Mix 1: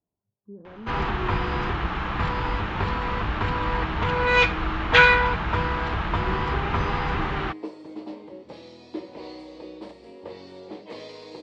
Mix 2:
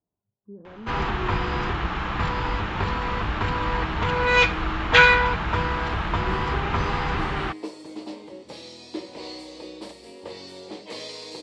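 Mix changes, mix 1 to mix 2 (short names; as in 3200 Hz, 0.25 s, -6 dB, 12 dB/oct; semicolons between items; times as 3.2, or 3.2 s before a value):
second sound: add high shelf 2900 Hz +10.5 dB; master: remove air absorption 76 m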